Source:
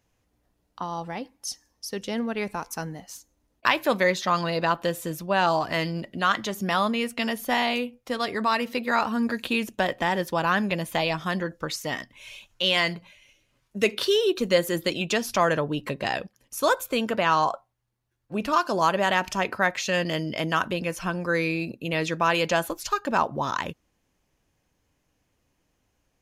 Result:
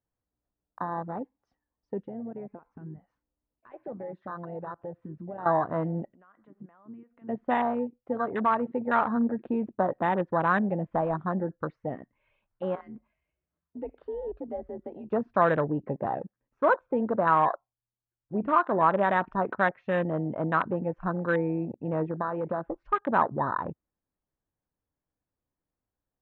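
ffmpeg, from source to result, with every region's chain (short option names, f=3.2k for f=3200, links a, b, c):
-filter_complex "[0:a]asettb=1/sr,asplit=3[a][b][c];[a]atrim=end=2.054[d];[b]atrim=start=2.05:end=5.46,asetpts=PTS-STARTPTS,afade=t=in:d=0.004:c=qsin,afade=t=out:st=3.406:d=0.004:c=qsin,acompressor=threshold=-36dB:ratio=2.5:attack=3.2:release=140:knee=1:detection=peak,asoftclip=type=hard:threshold=-29.5dB[e];[c]atrim=start=5.456[f];[d][e]acrossfade=d=0.004:c1=hsin:c2=qsin[g];[g][f]acrossfade=d=0.004:c1=qsin:c2=hsin,asettb=1/sr,asplit=3[h][i][j];[h]atrim=end=6.144[k];[i]atrim=start=6.14:end=7.29,asetpts=PTS-STARTPTS,afade=t=in:d=0.004:c=qsin,afade=t=out:st=1.146:d=0.004:c=qsin,lowpass=f=2.1k:p=1,equalizer=f=130:w=2.2:g=-12,acompressor=threshold=-40dB:ratio=5:attack=3.2:release=140:knee=1:detection=peak[l];[j]atrim=start=7.286[m];[k][l]acrossfade=d=0.004:c1=hsin:c2=qsin[n];[n][m]acrossfade=d=0.004:c1=qsin:c2=hsin,asettb=1/sr,asplit=3[o][p][q];[o]atrim=end=12.754[r];[p]atrim=start=12.75:end=15.12,asetpts=PTS-STARTPTS,afade=t=in:d=0.004:c=qsin,afade=t=out:st=2.366:d=0.004:c=qsin,aeval=exprs='if(lt(val(0),0),0.708*val(0),val(0))':c=same,acompressor=threshold=-39dB:ratio=2:attack=3.2:release=140:knee=1:detection=peak,afreqshift=46[s];[q]atrim=start=15.116[t];[r][s]acrossfade=d=0.004:c1=hsin:c2=qsin[u];[u][t]acrossfade=d=0.004:c1=qsin:c2=hsin,asettb=1/sr,asplit=3[v][w][x];[v]atrim=end=22.034[y];[w]atrim=start=22.03:end=22.74,asetpts=PTS-STARTPTS,afade=t=in:d=0.004:c=qsin,afade=t=out:st=0.706:d=0.004:c=qsin,lowpass=2.8k,acompressor=threshold=-24dB:ratio=6:attack=3.2:release=140:knee=1:detection=peak[z];[x]atrim=start=22.736[aa];[y][z]acrossfade=d=0.004:c1=hsin:c2=qsin[ab];[ab][aa]acrossfade=d=0.004:c1=qsin:c2=hsin,lowpass=f=1.6k:w=0.5412,lowpass=f=1.6k:w=1.3066,aemphasis=mode=production:type=50fm,afwtdn=0.0316"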